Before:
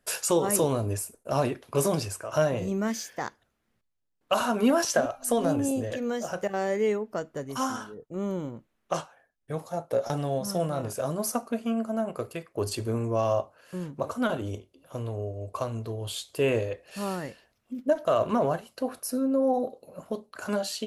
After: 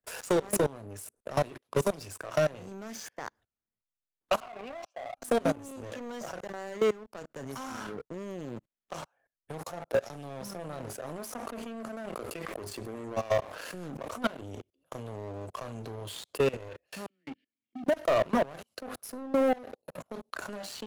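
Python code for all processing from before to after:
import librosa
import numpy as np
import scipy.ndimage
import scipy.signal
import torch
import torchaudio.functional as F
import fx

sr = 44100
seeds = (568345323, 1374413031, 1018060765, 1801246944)

y = fx.chain(x, sr, fx.vowel_filter(vowel='a'),
    fx.high_shelf(hz=7100.0, db=-9.0),
    fx.band_widen(depth_pct=40), at=(4.4, 5.17))
y = fx.chain(y, sr, fx.peak_eq(hz=130.0, db=-9.5, octaves=0.49),
    fx.sustainer(db_per_s=22.0), at=(11.07, 14.37))
y = fx.chain(y, sr, fx.over_compress(threshold_db=-36.0, ratio=-0.5),
    fx.vowel_filter(vowel='i'),
    fx.dispersion(late='lows', ms=43.0, hz=620.0), at=(17.06, 17.84))
y = fx.level_steps(y, sr, step_db=24)
y = fx.leveller(y, sr, passes=3)
y = fx.band_squash(y, sr, depth_pct=40)
y = y * librosa.db_to_amplitude(-4.0)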